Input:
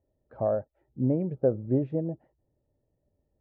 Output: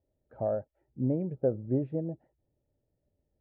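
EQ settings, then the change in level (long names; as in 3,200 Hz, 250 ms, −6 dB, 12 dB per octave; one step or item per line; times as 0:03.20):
high-frequency loss of the air 180 metres
notch filter 1,100 Hz, Q 6
−3.0 dB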